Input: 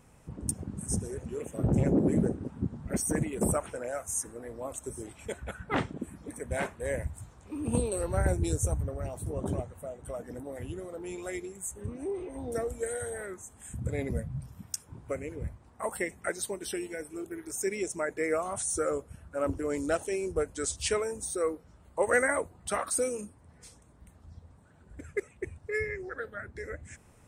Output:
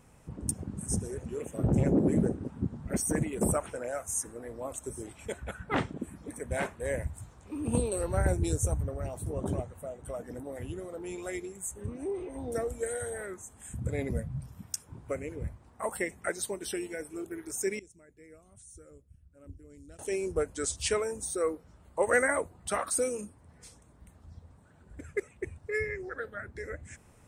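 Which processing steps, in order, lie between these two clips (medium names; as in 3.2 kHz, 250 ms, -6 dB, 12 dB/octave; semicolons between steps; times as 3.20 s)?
17.79–19.99 s: amplifier tone stack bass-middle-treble 10-0-1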